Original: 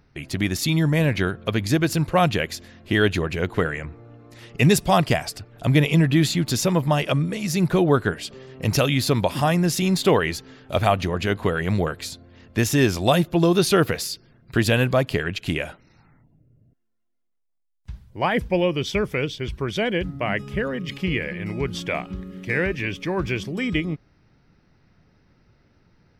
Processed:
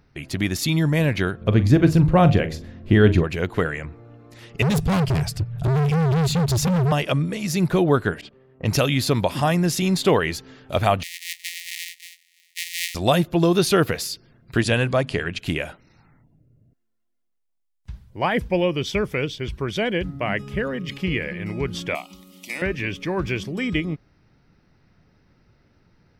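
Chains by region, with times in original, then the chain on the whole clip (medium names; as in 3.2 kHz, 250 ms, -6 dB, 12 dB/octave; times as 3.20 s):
1.41–3.24 s: tilt EQ -3 dB/octave + doubling 42 ms -13.5 dB + de-hum 78.88 Hz, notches 15
4.62–6.92 s: resonant low shelf 210 Hz +13 dB, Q 3 + compression 5:1, threshold -3 dBFS + overload inside the chain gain 18 dB
8.21–10.18 s: gate -37 dBFS, range -12 dB + level-controlled noise filter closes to 1.3 kHz, open at -18.5 dBFS
11.03–12.95 s: sorted samples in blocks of 256 samples + Chebyshev high-pass 1.8 kHz, order 10
14.61–15.39 s: Chebyshev low-pass 11 kHz, order 10 + hum notches 50/100/150/200/250 Hz
21.95–22.62 s: tilt EQ +4.5 dB/octave + static phaser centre 440 Hz, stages 6
whole clip: none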